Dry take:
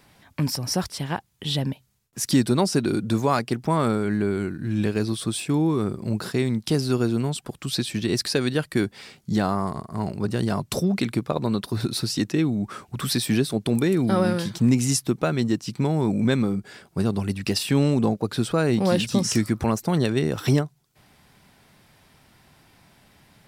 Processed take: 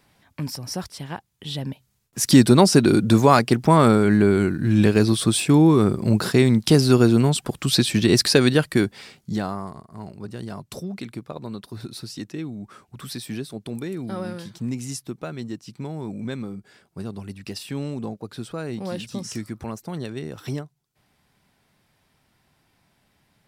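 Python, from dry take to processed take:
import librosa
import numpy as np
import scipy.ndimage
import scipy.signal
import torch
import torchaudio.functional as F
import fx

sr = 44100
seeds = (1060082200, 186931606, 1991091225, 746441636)

y = fx.gain(x, sr, db=fx.line((1.55, -5.0), (2.41, 7.0), (8.46, 7.0), (9.32, -2.5), (9.84, -9.5)))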